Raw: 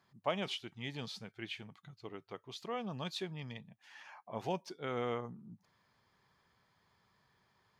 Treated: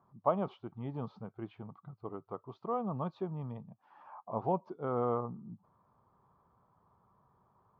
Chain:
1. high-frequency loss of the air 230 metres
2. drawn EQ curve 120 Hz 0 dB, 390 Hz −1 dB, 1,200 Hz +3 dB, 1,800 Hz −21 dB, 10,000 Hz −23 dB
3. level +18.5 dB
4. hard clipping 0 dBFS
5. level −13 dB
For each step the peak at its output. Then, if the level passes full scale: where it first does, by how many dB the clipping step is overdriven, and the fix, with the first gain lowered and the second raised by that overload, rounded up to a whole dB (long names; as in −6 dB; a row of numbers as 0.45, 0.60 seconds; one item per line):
−21.5, −21.0, −2.5, −2.5, −15.5 dBFS
no step passes full scale